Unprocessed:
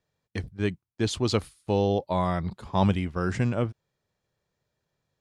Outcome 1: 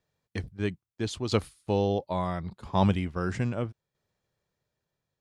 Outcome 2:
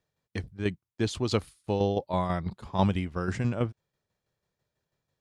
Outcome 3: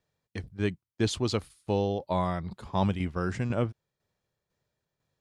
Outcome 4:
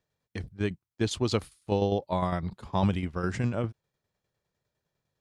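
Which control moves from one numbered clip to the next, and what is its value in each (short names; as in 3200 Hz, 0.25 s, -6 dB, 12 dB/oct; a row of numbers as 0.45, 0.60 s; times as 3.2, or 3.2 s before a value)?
tremolo, rate: 0.76, 6.1, 2, 9.9 Hz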